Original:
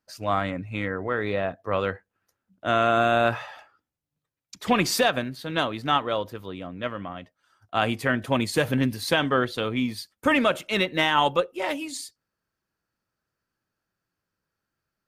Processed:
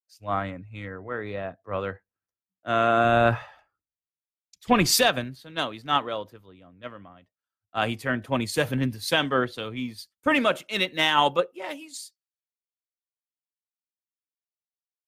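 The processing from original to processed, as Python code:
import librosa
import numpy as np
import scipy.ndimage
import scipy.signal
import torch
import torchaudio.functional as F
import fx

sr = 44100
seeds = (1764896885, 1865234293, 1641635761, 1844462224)

y = fx.low_shelf(x, sr, hz=92.0, db=10.5, at=(3.04, 5.37))
y = fx.band_widen(y, sr, depth_pct=100)
y = y * librosa.db_to_amplitude(-2.5)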